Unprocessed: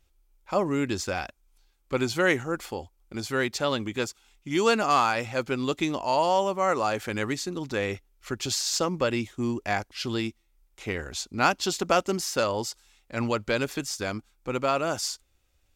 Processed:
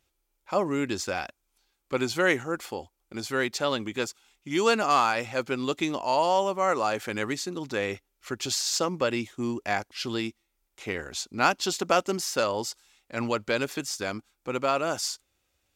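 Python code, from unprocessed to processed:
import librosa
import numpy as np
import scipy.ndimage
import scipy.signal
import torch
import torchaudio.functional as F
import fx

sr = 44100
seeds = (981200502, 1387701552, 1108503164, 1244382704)

y = fx.highpass(x, sr, hz=170.0, slope=6)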